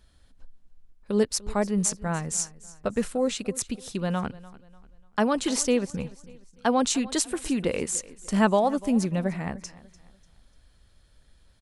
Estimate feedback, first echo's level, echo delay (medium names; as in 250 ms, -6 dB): 36%, -19.5 dB, 295 ms